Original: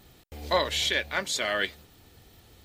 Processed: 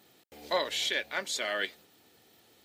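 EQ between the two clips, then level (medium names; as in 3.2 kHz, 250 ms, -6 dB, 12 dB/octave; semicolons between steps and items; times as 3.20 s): high-pass 240 Hz 12 dB/octave; peaking EQ 1.1 kHz -2.5 dB 0.36 oct; -4.0 dB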